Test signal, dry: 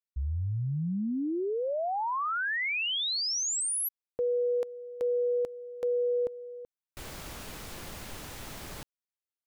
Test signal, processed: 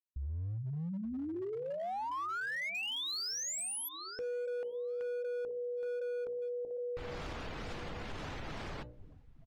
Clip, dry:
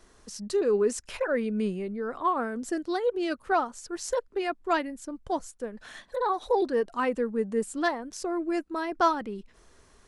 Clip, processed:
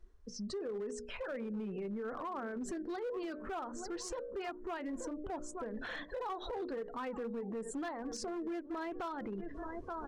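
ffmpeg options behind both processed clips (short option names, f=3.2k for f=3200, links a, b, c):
-filter_complex "[0:a]aemphasis=mode=reproduction:type=50kf,asplit=2[a][b];[b]adelay=879,lowpass=f=3.2k:p=1,volume=-21dB,asplit=2[c][d];[d]adelay=879,lowpass=f=3.2k:p=1,volume=0.35,asplit=2[e][f];[f]adelay=879,lowpass=f=3.2k:p=1,volume=0.35[g];[c][e][g]amix=inputs=3:normalize=0[h];[a][h]amix=inputs=2:normalize=0,tremolo=f=2.2:d=0.33,dynaudnorm=f=340:g=13:m=10dB,afftdn=nr=22:nf=-48,bandreject=f=60:t=h:w=6,bandreject=f=120:t=h:w=6,bandreject=f=180:t=h:w=6,bandreject=f=240:t=h:w=6,bandreject=f=300:t=h:w=6,bandreject=f=360:t=h:w=6,bandreject=f=420:t=h:w=6,bandreject=f=480:t=h:w=6,bandreject=f=540:t=h:w=6,bandreject=f=600:t=h:w=6,acompressor=threshold=-35dB:ratio=8:attack=0.37:release=244:knee=6:detection=peak,flanger=delay=0.4:depth=2.5:regen=-85:speed=1.3:shape=sinusoidal,asoftclip=type=hard:threshold=-39.5dB,alimiter=level_in=20dB:limit=-24dB:level=0:latency=1:release=42,volume=-20dB,volume=9dB"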